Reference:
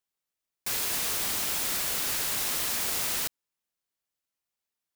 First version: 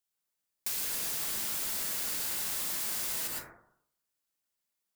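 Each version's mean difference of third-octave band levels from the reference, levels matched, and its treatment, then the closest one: 3.0 dB: high shelf 3200 Hz +8.5 dB; plate-style reverb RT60 0.67 s, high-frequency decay 0.25×, pre-delay 95 ms, DRR -2.5 dB; compressor 6:1, threshold -25 dBFS, peak gain reduction 8 dB; gain -6 dB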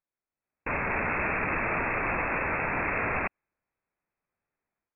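21.5 dB: AGC gain up to 10 dB; inverted band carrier 2600 Hz; mismatched tape noise reduction decoder only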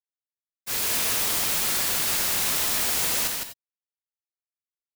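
1.5 dB: expander -24 dBFS; echo 0.159 s -4 dB; non-linear reverb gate 0.11 s rising, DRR 7 dB; gain +7.5 dB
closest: third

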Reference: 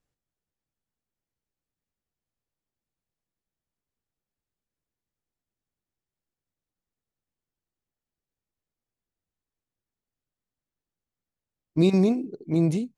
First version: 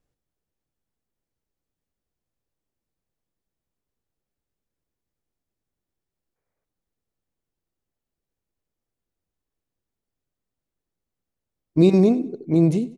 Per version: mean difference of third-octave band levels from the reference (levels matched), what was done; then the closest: 2.0 dB: low shelf 100 Hz +7 dB; spectral gain 6.36–6.65, 390–2500 Hz +9 dB; bell 420 Hz +5.5 dB 2.2 oct; on a send: feedback echo 97 ms, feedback 32%, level -18.5 dB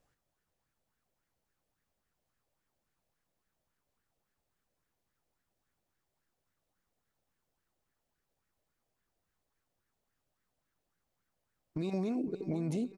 5.5 dB: compressor 4:1, threshold -32 dBFS, peak gain reduction 14 dB; limiter -32.5 dBFS, peak gain reduction 10.5 dB; feedback echo 0.509 s, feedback 54%, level -15 dB; LFO bell 3.6 Hz 570–1700 Hz +11 dB; gain +4.5 dB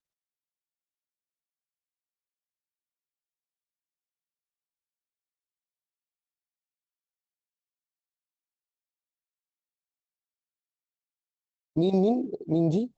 4.0 dB: gate with hold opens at -53 dBFS; EQ curve 230 Hz 0 dB, 730 Hz +10 dB, 1500 Hz -17 dB, 2200 Hz -14 dB, 3400 Hz +4 dB, 6400 Hz -5 dB; limiter -15 dBFS, peak gain reduction 8.5 dB; Opus 16 kbps 48000 Hz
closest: first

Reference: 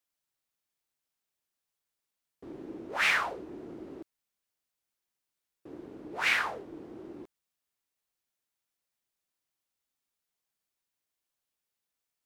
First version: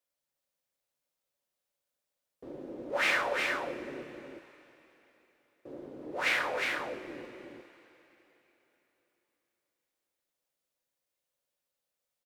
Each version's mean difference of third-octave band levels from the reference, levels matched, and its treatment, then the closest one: 6.5 dB: bell 550 Hz +11.5 dB 0.5 oct; on a send: echo 0.359 s -4 dB; on the sum: two-slope reverb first 0.25 s, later 3.8 s, from -18 dB, DRR 6.5 dB; gain -3 dB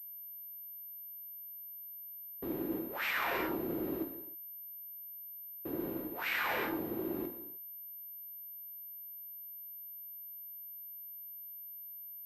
9.0 dB: non-linear reverb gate 0.34 s falling, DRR 5 dB; reverse; compressor 20:1, threshold -38 dBFS, peak gain reduction 17.5 dB; reverse; pulse-width modulation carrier 13000 Hz; gain +7 dB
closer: first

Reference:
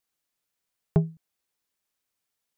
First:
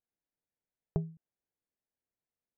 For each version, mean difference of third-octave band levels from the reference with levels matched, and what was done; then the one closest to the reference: 1.5 dB: LPF 1700 Hz 24 dB/oct; bell 1200 Hz -13.5 dB 0.83 oct; compressor 6:1, threshold -25 dBFS, peak gain reduction 8.5 dB; gain -3.5 dB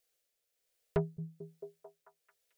4.0 dB: graphic EQ 125/250/500/1000 Hz -8/-12/+11/-11 dB; soft clip -26.5 dBFS, distortion -8 dB; tremolo 1.2 Hz, depth 40%; on a send: delay with a stepping band-pass 0.221 s, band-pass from 160 Hz, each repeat 0.7 oct, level -7 dB; on the sum: gain +3.5 dB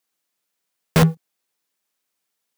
13.0 dB: HPF 160 Hz 12 dB/oct; sample leveller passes 3; in parallel at -1 dB: wrapped overs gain 17.5 dB; on the sum: gain +5 dB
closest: first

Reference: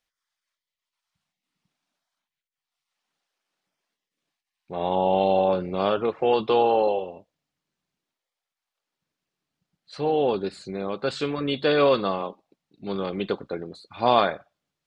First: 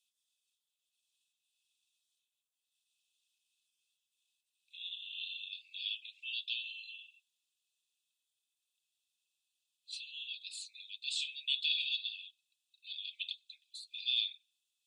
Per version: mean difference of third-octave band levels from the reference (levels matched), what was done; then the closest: 20.5 dB: in parallel at +2 dB: compressor, threshold -29 dBFS, peak gain reduction 14.5 dB; on the sum: rippled Chebyshev high-pass 2500 Hz, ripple 9 dB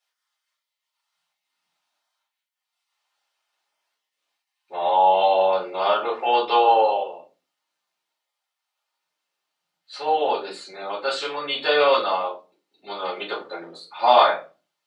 6.5 dB: HPF 760 Hz 12 dB/oct; shoebox room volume 120 m³, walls furnished, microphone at 4.2 m; gain -3.5 dB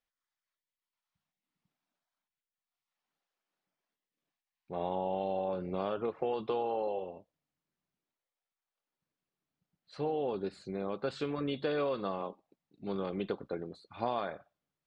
2.0 dB: high shelf 2600 Hz -8 dB; compressor, threshold -24 dBFS, peak gain reduction 10 dB; gain -5.5 dB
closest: third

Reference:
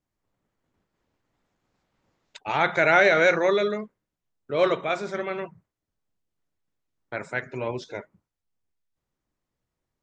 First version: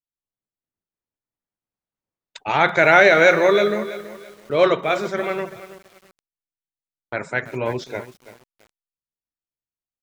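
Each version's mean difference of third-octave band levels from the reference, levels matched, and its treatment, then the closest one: 2.5 dB: gate -50 dBFS, range -27 dB; lo-fi delay 0.331 s, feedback 35%, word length 7-bit, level -14 dB; gain +5.5 dB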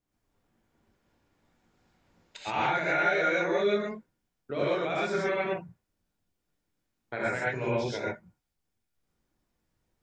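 7.0 dB: compressor 16:1, threshold -28 dBFS, peak gain reduction 15 dB; non-linear reverb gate 0.15 s rising, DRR -6.5 dB; gain -2.5 dB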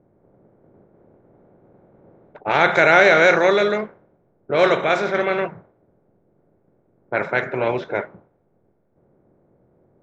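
4.0 dB: per-bin compression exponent 0.6; low-pass opened by the level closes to 410 Hz, open at -16 dBFS; gain +3 dB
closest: first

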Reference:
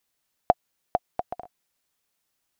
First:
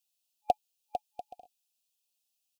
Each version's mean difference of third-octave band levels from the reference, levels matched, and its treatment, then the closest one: 7.0 dB: FFT band-reject 850–2400 Hz; tilt shelf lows -9 dB, about 800 Hz; comb 3.9 ms, depth 33%; upward expander 1.5:1, over -32 dBFS; gain -5 dB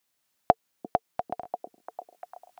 1.5 dB: recorder AGC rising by 5.1 dB/s; HPF 100 Hz 6 dB/oct; notch 450 Hz, Q 12; delay with a stepping band-pass 0.346 s, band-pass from 270 Hz, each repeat 0.7 oct, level -8 dB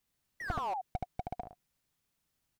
12.5 dB: tone controls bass +12 dB, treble -1 dB; painted sound fall, 0.4–0.74, 710–2000 Hz -25 dBFS; on a send: echo 75 ms -7 dB; on the sum: slew limiter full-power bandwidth 31 Hz; gain -4.5 dB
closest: second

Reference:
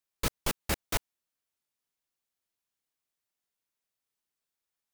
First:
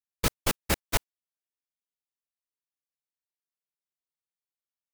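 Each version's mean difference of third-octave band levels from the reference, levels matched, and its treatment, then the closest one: 2.0 dB: gate -33 dBFS, range -18 dB; gain +4.5 dB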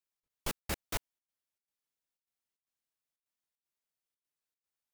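12.0 dB: step gate "xx.xxx.xxx" 152 bpm -60 dB; gain -5.5 dB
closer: first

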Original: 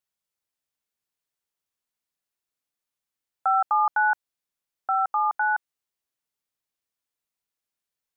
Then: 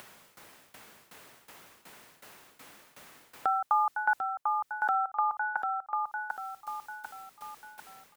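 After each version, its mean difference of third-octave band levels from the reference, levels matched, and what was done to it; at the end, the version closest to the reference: 4.0 dB: upward compressor, threshold -29 dBFS; tremolo saw down 2.7 Hz, depth 90%; feedback echo 0.745 s, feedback 32%, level -5.5 dB; three-band squash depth 40%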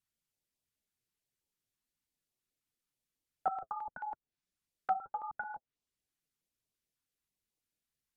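6.5 dB: treble ducked by the level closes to 410 Hz, closed at -20 dBFS; low shelf 400 Hz +8.5 dB; flange 1.5 Hz, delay 0.3 ms, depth 8.3 ms, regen -35%; stepped notch 9.2 Hz 530–1500 Hz; gain +1.5 dB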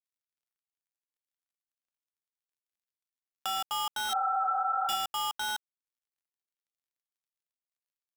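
18.5 dB: switching dead time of 0.26 ms; spectral repair 4.12–4.93, 450–1600 Hz after; limiter -24 dBFS, peak gain reduction 9.5 dB; mismatched tape noise reduction encoder only; gain +2 dB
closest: first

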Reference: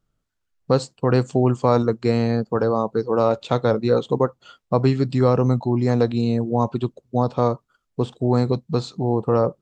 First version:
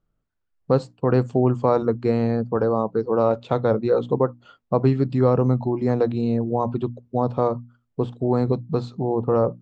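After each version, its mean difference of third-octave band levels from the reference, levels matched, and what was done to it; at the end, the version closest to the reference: 2.5 dB: LPF 1400 Hz 6 dB/oct; notches 60/120/180/240/300 Hz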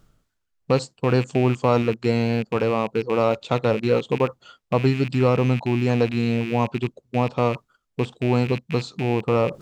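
4.5 dB: rattling part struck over -29 dBFS, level -21 dBFS; reverse; upward compressor, threshold -27 dBFS; reverse; gain -1.5 dB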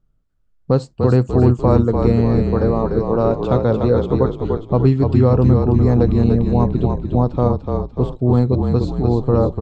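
6.0 dB: tilt -2.5 dB/oct; on a send: frequency-shifting echo 0.295 s, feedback 53%, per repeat -35 Hz, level -4.5 dB; on the sum: gain -1.5 dB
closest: first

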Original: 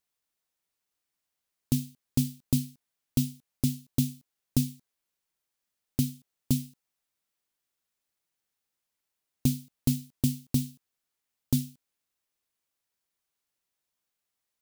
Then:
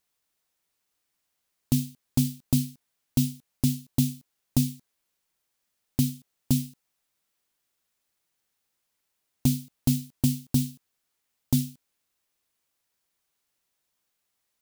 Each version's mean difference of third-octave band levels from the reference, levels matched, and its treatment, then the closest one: 1.5 dB: in parallel at -0.5 dB: limiter -22 dBFS, peak gain reduction 10.5 dB; on the sum: hard clip -12.5 dBFS, distortion -24 dB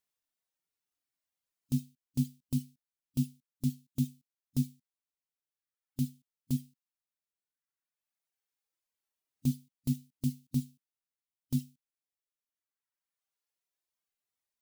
5.0 dB: reverb removal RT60 1.8 s; harmonic-percussive split percussive -13 dB; gain +1 dB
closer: first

